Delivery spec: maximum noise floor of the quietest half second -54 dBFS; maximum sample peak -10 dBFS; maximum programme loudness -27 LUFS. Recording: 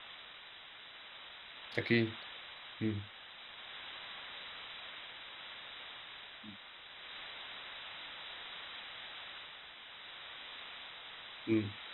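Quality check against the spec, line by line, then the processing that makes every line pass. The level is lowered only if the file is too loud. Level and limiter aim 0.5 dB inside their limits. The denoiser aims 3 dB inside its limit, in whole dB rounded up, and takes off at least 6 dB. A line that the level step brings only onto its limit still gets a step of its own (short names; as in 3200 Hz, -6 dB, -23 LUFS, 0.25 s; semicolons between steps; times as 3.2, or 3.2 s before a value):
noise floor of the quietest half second -53 dBFS: fail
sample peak -16.5 dBFS: OK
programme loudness -42.5 LUFS: OK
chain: denoiser 6 dB, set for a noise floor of -53 dBFS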